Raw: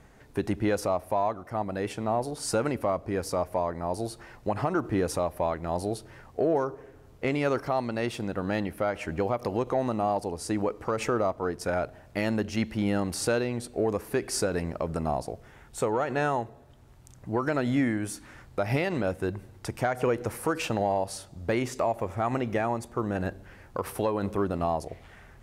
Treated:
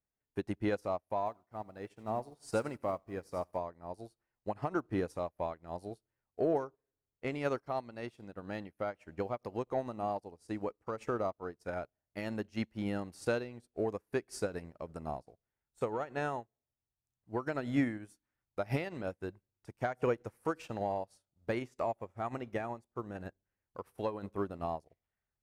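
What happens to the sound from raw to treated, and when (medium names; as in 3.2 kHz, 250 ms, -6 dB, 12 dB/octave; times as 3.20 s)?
1.18–3.57 s: bit-crushed delay 82 ms, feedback 55%, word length 8-bit, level -14.5 dB
whole clip: upward expansion 2.5:1, over -47 dBFS; trim -3 dB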